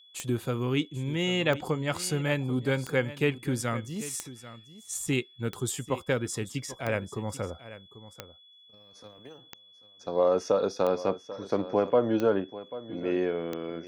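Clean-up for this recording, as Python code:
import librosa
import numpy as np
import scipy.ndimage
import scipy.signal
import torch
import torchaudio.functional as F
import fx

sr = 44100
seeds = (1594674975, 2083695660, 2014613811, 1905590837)

y = fx.fix_declick_ar(x, sr, threshold=10.0)
y = fx.notch(y, sr, hz=3400.0, q=30.0)
y = fx.fix_echo_inverse(y, sr, delay_ms=790, level_db=-15.5)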